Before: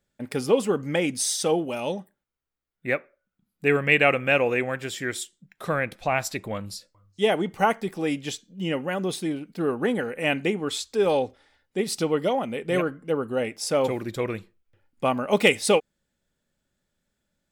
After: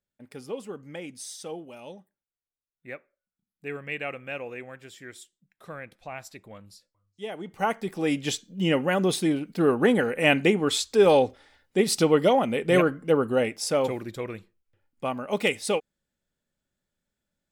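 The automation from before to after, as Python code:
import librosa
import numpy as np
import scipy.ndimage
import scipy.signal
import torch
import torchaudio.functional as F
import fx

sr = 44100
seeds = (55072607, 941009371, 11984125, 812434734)

y = fx.gain(x, sr, db=fx.line((7.32, -14.0), (7.65, -4.5), (8.34, 4.0), (13.26, 4.0), (14.24, -6.0)))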